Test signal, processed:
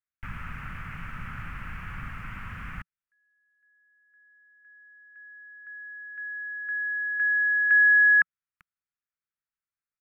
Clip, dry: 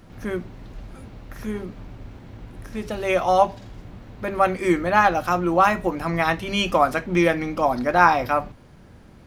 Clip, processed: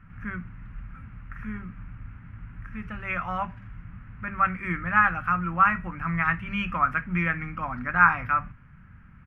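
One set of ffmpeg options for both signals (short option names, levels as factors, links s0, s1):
-af "firequalizer=gain_entry='entry(170,0);entry(360,-21);entry(660,-19);entry(1300,4);entry(2600,-4);entry(3800,-28)':delay=0.05:min_phase=1,volume=0.891"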